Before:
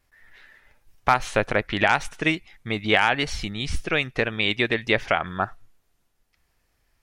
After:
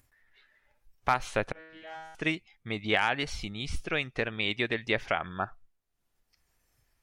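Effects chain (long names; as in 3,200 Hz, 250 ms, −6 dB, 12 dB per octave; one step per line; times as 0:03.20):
upward compression, threshold −43 dBFS
noise reduction from a noise print of the clip's start 10 dB
0:01.52–0:02.15: tuned comb filter 160 Hz, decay 1.2 s, mix 100%
level −7 dB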